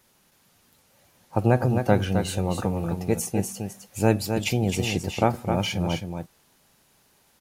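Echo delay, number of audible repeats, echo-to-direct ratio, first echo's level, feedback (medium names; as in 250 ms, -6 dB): 262 ms, 1, -6.5 dB, -6.5 dB, no regular repeats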